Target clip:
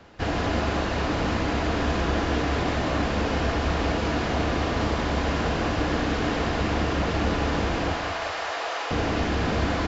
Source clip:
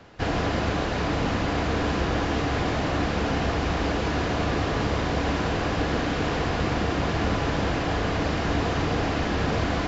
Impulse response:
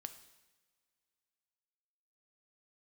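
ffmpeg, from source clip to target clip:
-filter_complex "[0:a]asettb=1/sr,asplit=3[a][b][c];[a]atrim=end=7.934[d];[b]atrim=start=7.93:end=8.91,asetpts=PTS-STARTPTS,afade=t=in:d=0.004:c=qsin,afade=t=out:st=0.976:d=0.004:c=qsin,highpass=f=570:w=0.5412,highpass=f=570:w=1.3066[e];[c]atrim=start=8.906[f];[d][e]acrossfade=d=0.004:c1=hsin:c2=qsin[g];[g][f]acrossfade=d=0.004:c1=qsin:c2=hsin,aecho=1:1:193|386|579|772:0.398|0.131|0.0434|0.0143[h];[1:a]atrim=start_sample=2205[i];[h][i]afir=irnorm=-1:irlink=0,volume=4dB"

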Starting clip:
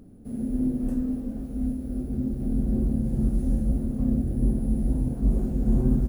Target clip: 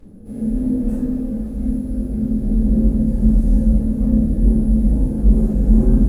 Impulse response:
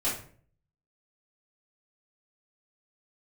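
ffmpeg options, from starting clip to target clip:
-filter_complex "[1:a]atrim=start_sample=2205,afade=t=out:st=0.13:d=0.01,atrim=end_sample=6174,asetrate=30870,aresample=44100[a];[0:a][a]afir=irnorm=-1:irlink=0,volume=-4dB"

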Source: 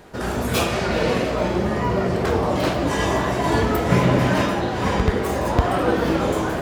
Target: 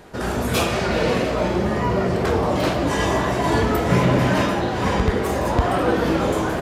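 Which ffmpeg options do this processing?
-af "aresample=32000,aresample=44100,acontrast=51,volume=-5dB"

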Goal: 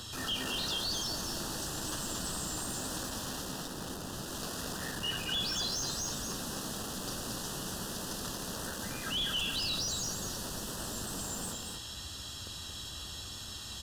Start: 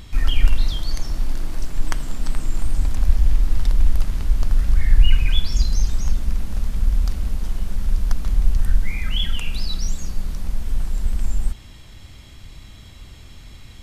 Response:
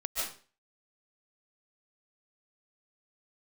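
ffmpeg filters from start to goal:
-filter_complex "[0:a]highpass=59,bass=f=250:g=-5,treble=f=4k:g=15,asettb=1/sr,asplit=3[a][b][c];[a]atrim=end=3.414[d];[b]atrim=start=3.41:end=4.28,asetpts=PTS-STARTPTS,afade=t=in:d=0.004:c=qsin,afade=t=out:st=0.866:d=0.004:c=qsin,acrossover=split=290[e][f];[f]acompressor=threshold=-37dB:ratio=6[g];[e][g]amix=inputs=2:normalize=0[h];[c]atrim=start=4.276[i];[d][h]acrossfade=d=0.004:c1=hsin:c2=qsin[j];[j][i]acrossfade=d=0.004:c1=qsin:c2=hsin,flanger=delay=8:depth=8.4:regen=-16:speed=0.97:shape=triangular,aeval=exprs='(tanh(35.5*val(0)+0.25)-tanh(0.25))/35.5':c=same,acrossover=split=140|950[k][l][m];[k]aeval=exprs='(mod(150*val(0)+1,2)-1)/150':c=same[n];[m]asplit=2[o][p];[p]highpass=f=720:p=1,volume=11dB,asoftclip=type=tanh:threshold=-26dB[q];[o][q]amix=inputs=2:normalize=0,lowpass=f=2.3k:p=1,volume=-6dB[r];[n][l][r]amix=inputs=3:normalize=0,asuperstop=centerf=2200:order=4:qfactor=2.5,asplit=2[s][t];[t]aecho=0:1:229:0.596[u];[s][u]amix=inputs=2:normalize=0,volume=3dB"

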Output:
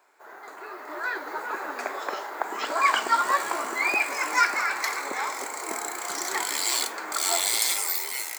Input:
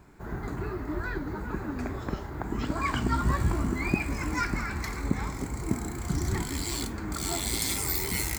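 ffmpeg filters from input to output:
-af "highpass=f=520:w=0.5412,highpass=f=520:w=1.3066,dynaudnorm=f=170:g=11:m=11dB,volume=-1.5dB"

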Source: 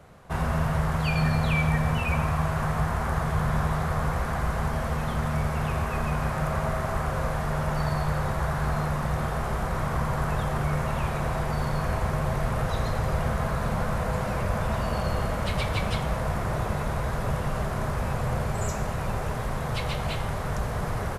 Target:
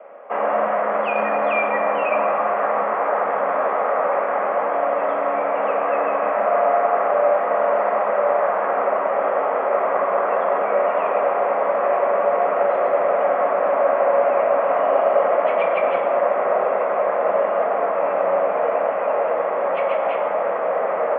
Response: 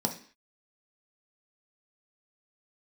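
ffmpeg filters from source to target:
-filter_complex "[1:a]atrim=start_sample=2205,asetrate=25578,aresample=44100[a];[0:a][a]afir=irnorm=-1:irlink=0,highpass=f=410:t=q:w=0.5412,highpass=f=410:t=q:w=1.307,lowpass=f=2k:t=q:w=0.5176,lowpass=f=2k:t=q:w=0.7071,lowpass=f=2k:t=q:w=1.932,afreqshift=57,volume=2.5dB"

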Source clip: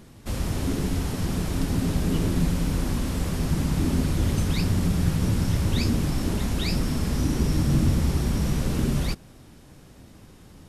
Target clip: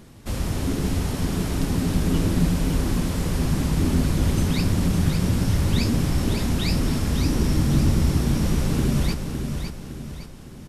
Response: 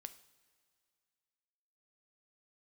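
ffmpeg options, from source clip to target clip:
-af "aecho=1:1:559|1118|1677|2236|2795:0.473|0.208|0.0916|0.0403|0.0177,volume=1.5dB"

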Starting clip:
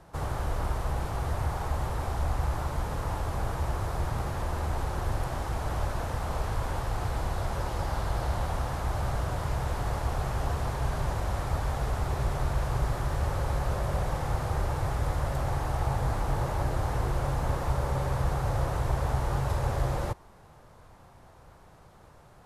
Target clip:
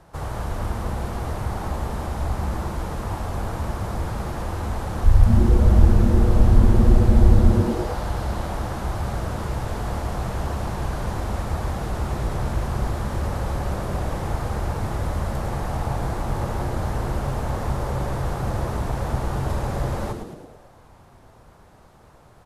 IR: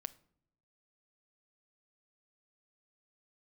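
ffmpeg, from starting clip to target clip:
-filter_complex "[0:a]asplit=3[a][b][c];[a]afade=t=out:st=5.03:d=0.02[d];[b]asubboost=boost=8.5:cutoff=82,afade=t=in:st=5.03:d=0.02,afade=t=out:st=7.5:d=0.02[e];[c]afade=t=in:st=7.5:d=0.02[f];[d][e][f]amix=inputs=3:normalize=0,asplit=8[g][h][i][j][k][l][m][n];[h]adelay=107,afreqshift=-130,volume=-6.5dB[o];[i]adelay=214,afreqshift=-260,volume=-11.5dB[p];[j]adelay=321,afreqshift=-390,volume=-16.6dB[q];[k]adelay=428,afreqshift=-520,volume=-21.6dB[r];[l]adelay=535,afreqshift=-650,volume=-26.6dB[s];[m]adelay=642,afreqshift=-780,volume=-31.7dB[t];[n]adelay=749,afreqshift=-910,volume=-36.7dB[u];[g][o][p][q][r][s][t][u]amix=inputs=8:normalize=0,volume=2dB"

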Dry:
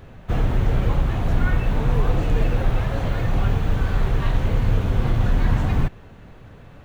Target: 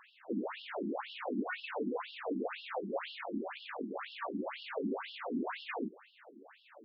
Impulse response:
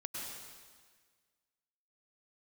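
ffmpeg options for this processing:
-filter_complex "[0:a]asettb=1/sr,asplit=3[a][b][c];[a]atrim=end=3.154[d];[b]atrim=start=3.15:end=4.35,asetpts=PTS-STARTPTS,afade=t=in:d=0.004:c=qsin,afade=t=out:st=1.196:d=0.004:c=qsin,aeval=exprs='0.398*(cos(1*acos(clip(val(0)/0.398,-1,1)))-cos(1*PI/2))+0.0501*(cos(3*acos(clip(val(0)/0.398,-1,1)))-cos(3*PI/2))':c=same[e];[c]atrim=start=4.346[f];[d][e]acrossfade=d=0.004:c1=hsin:c2=qsin[g];[g][f]acrossfade=d=0.004:c1=qsin:c2=hsin,acrossover=split=180[h][i];[i]acompressor=threshold=-27dB:ratio=6[j];[h][j]amix=inputs=2:normalize=0,afftfilt=real='re*between(b*sr/1024,260*pow(3900/260,0.5+0.5*sin(2*PI*2*pts/sr))/1.41,260*pow(3900/260,0.5+0.5*sin(2*PI*2*pts/sr))*1.41)':imag='im*between(b*sr/1024,260*pow(3900/260,0.5+0.5*sin(2*PI*2*pts/sr))/1.41,260*pow(3900/260,0.5+0.5*sin(2*PI*2*pts/sr))*1.41)':win_size=1024:overlap=0.75"

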